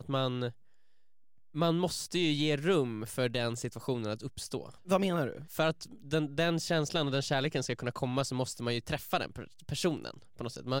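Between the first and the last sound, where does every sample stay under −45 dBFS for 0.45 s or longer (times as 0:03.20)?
0:00.51–0:01.54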